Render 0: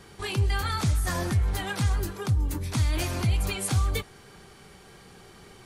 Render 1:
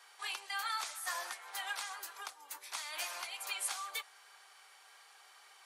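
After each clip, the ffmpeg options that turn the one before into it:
ffmpeg -i in.wav -af "highpass=frequency=770:width=0.5412,highpass=frequency=770:width=1.3066,volume=-5.5dB" out.wav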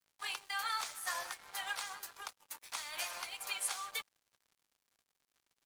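ffmpeg -i in.wav -af "equalizer=frequency=490:width=6.3:gain=3.5,aeval=exprs='sgn(val(0))*max(abs(val(0))-0.00224,0)':channel_layout=same,volume=1.5dB" out.wav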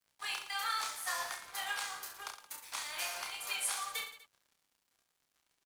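ffmpeg -i in.wav -af "aecho=1:1:30|67.5|114.4|173|246.2:0.631|0.398|0.251|0.158|0.1" out.wav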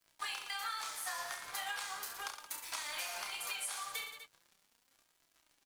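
ffmpeg -i in.wav -af "acompressor=threshold=-44dB:ratio=5,flanger=delay=3:depth=4.1:regen=64:speed=0.38:shape=sinusoidal,volume=10dB" out.wav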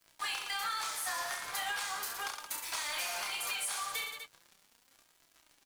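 ffmpeg -i in.wav -af "asoftclip=type=tanh:threshold=-36dB,volume=6.5dB" out.wav

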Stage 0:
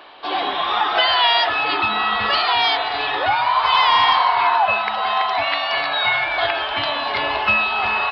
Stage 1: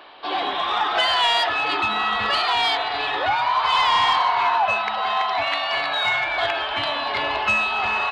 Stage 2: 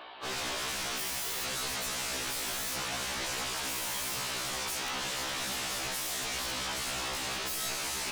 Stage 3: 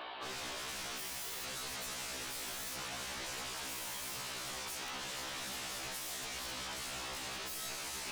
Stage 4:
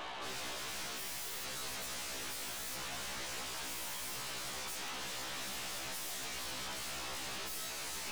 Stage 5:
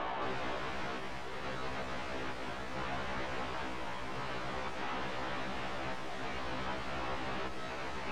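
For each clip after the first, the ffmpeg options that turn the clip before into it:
ffmpeg -i in.wav -af "acontrast=67,volume=-8.5dB" out.wav
ffmpeg -i in.wav -af "aeval=exprs='0.0398*(abs(mod(val(0)/0.0398+3,4)-2)-1)':channel_layout=same,afftfilt=real='re*1.73*eq(mod(b,3),0)':imag='im*1.73*eq(mod(b,3),0)':win_size=2048:overlap=0.75" out.wav
ffmpeg -i in.wav -af "alimiter=level_in=12.5dB:limit=-24dB:level=0:latency=1,volume=-12.5dB,volume=2dB" out.wav
ffmpeg -i in.wav -af "aeval=exprs='(tanh(200*val(0)+0.6)-tanh(0.6))/200':channel_layout=same,volume=6.5dB" out.wav
ffmpeg -i in.wav -af "adynamicsmooth=sensitivity=4:basefreq=1300,volume=9.5dB" out.wav

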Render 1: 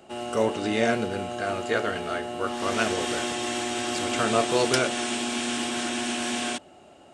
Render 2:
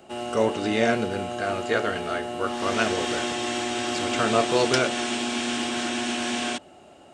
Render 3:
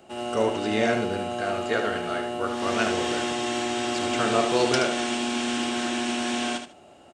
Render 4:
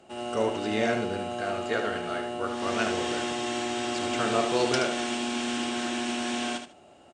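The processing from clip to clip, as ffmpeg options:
ffmpeg -i in.wav -filter_complex "[0:a]acrossover=split=8200[link_01][link_02];[link_02]acompressor=threshold=-56dB:ratio=4:attack=1:release=60[link_03];[link_01][link_03]amix=inputs=2:normalize=0,volume=1.5dB" out.wav
ffmpeg -i in.wav -af "aecho=1:1:75|150|225:0.422|0.0843|0.0169,volume=-2dB" out.wav
ffmpeg -i in.wav -af "aresample=22050,aresample=44100,volume=-3dB" out.wav

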